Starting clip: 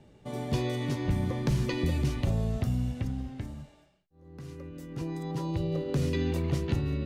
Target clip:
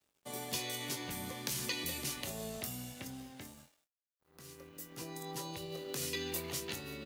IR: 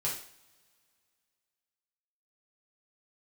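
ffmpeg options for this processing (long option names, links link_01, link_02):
-filter_complex "[0:a]aemphasis=mode=production:type=riaa,acrossover=split=170[link_01][link_02];[link_01]acompressor=threshold=-51dB:ratio=2[link_03];[link_03][link_02]amix=inputs=2:normalize=0,acrossover=split=110|1500[link_04][link_05][link_06];[link_05]alimiter=level_in=8dB:limit=-24dB:level=0:latency=1:release=186,volume=-8dB[link_07];[link_04][link_07][link_06]amix=inputs=3:normalize=0,aeval=exprs='sgn(val(0))*max(abs(val(0))-0.0015,0)':channel_layout=same,asplit=2[link_08][link_09];[link_09]adelay=23,volume=-9dB[link_10];[link_08][link_10]amix=inputs=2:normalize=0,volume=-3dB"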